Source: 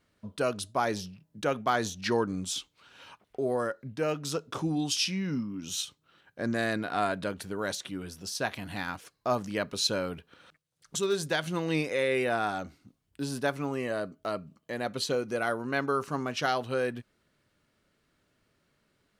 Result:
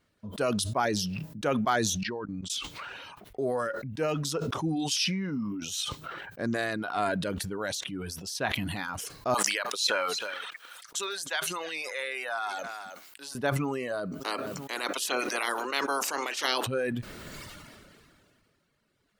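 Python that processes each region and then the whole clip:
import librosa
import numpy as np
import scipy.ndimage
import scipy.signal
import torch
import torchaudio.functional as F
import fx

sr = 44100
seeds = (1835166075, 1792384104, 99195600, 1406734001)

y = fx.chain(x, sr, fx.level_steps(step_db=17),
    fx.air_absorb(metres=130.0), at=(2.03, 2.5))
y = fx.chain(y, sr, fx.highpass(hz=880.0, slope=12),
    fx.echo_single(ms=316, db=-18.5), at=(9.34, 13.35))
y = fx.spec_clip(y, sr, under_db=22, at=(14.2, 16.66), fade=0.02)
y = fx.highpass(y, sr, hz=280.0, slope=24, at=(14.2, 16.66), fade=0.02)
y = fx.echo_feedback(y, sr, ms=479, feedback_pct=29, wet_db=-21.5, at=(14.2, 16.66), fade=0.02)
y = fx.dereverb_blind(y, sr, rt60_s=0.91)
y = fx.sustainer(y, sr, db_per_s=25.0)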